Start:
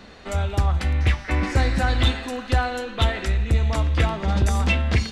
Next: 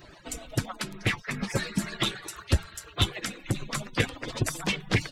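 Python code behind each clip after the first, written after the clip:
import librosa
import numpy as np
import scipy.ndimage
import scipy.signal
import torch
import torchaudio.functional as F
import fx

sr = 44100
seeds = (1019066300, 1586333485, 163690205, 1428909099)

y = fx.hpss_only(x, sr, part='percussive')
y = fx.high_shelf(y, sr, hz=8800.0, db=10.0)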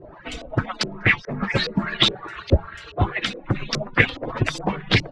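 y = fx.filter_lfo_lowpass(x, sr, shape='saw_up', hz=2.4, low_hz=440.0, high_hz=5500.0, q=2.9)
y = y * 10.0 ** (5.5 / 20.0)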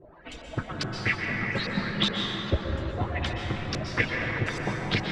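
y = fx.rev_plate(x, sr, seeds[0], rt60_s=4.2, hf_ratio=0.4, predelay_ms=110, drr_db=-0.5)
y = y * 10.0 ** (-9.0 / 20.0)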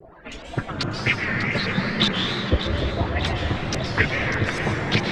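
y = fx.wow_flutter(x, sr, seeds[1], rate_hz=2.1, depth_cents=130.0)
y = fx.echo_alternate(y, sr, ms=298, hz=1800.0, feedback_pct=77, wet_db=-8.0)
y = y * 10.0 ** (5.0 / 20.0)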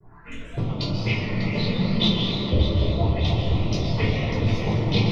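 y = fx.env_phaser(x, sr, low_hz=490.0, high_hz=1600.0, full_db=-26.0)
y = fx.room_shoebox(y, sr, seeds[2], volume_m3=550.0, walls='furnished', distance_m=5.0)
y = y * 10.0 ** (-7.5 / 20.0)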